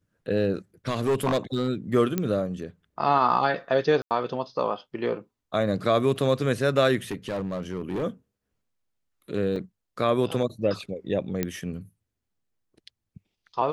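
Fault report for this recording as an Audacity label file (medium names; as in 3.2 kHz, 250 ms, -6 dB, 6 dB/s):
0.880000	1.680000	clipped -19 dBFS
2.180000	2.180000	pop -12 dBFS
4.020000	4.110000	dropout 88 ms
7.110000	8.040000	clipped -25 dBFS
9.560000	9.560000	dropout 3.2 ms
11.430000	11.430000	pop -12 dBFS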